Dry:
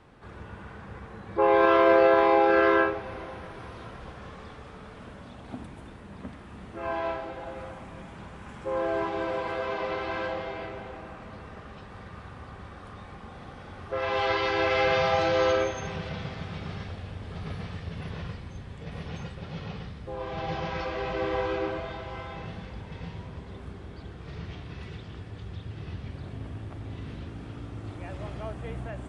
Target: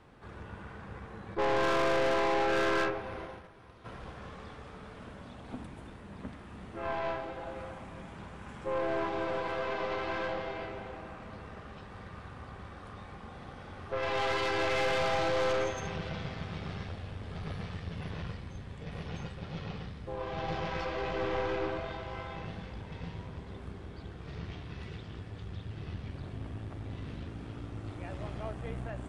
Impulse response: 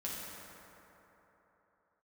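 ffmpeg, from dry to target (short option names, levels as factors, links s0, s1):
-filter_complex "[0:a]aeval=exprs='(tanh(20*val(0)+0.55)-tanh(0.55))/20':c=same,asplit=3[s0][s1][s2];[s0]afade=t=out:st=1.34:d=0.02[s3];[s1]agate=range=0.282:threshold=0.00891:ratio=16:detection=peak,afade=t=in:st=1.34:d=0.02,afade=t=out:st=3.84:d=0.02[s4];[s2]afade=t=in:st=3.84:d=0.02[s5];[s3][s4][s5]amix=inputs=3:normalize=0"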